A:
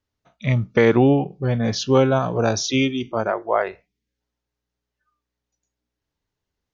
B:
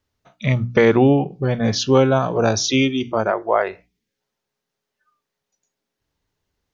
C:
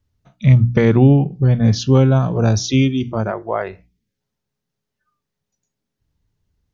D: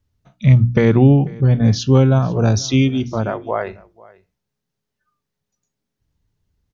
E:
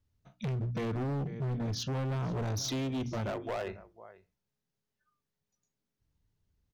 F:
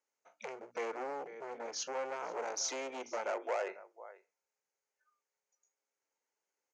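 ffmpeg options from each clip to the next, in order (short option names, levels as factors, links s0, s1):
-filter_complex "[0:a]bandreject=f=60:t=h:w=6,bandreject=f=120:t=h:w=6,bandreject=f=180:t=h:w=6,bandreject=f=240:t=h:w=6,bandreject=f=300:t=h:w=6,asplit=2[s0][s1];[s1]acompressor=threshold=0.0501:ratio=6,volume=0.944[s2];[s0][s2]amix=inputs=2:normalize=0"
-af "bass=f=250:g=15,treble=f=4000:g=2,volume=0.596"
-af "aecho=1:1:493:0.0708"
-af "acompressor=threshold=0.126:ratio=4,asoftclip=type=hard:threshold=0.0668,volume=0.422"
-af "highpass=f=400:w=0.5412,highpass=f=400:w=1.3066,equalizer=f=520:t=q:w=4:g=6,equalizer=f=860:t=q:w=4:g=7,equalizer=f=1400:t=q:w=4:g=5,equalizer=f=2200:t=q:w=4:g=7,equalizer=f=3600:t=q:w=4:g=-9,equalizer=f=6600:t=q:w=4:g=10,lowpass=f=8200:w=0.5412,lowpass=f=8200:w=1.3066,volume=0.708"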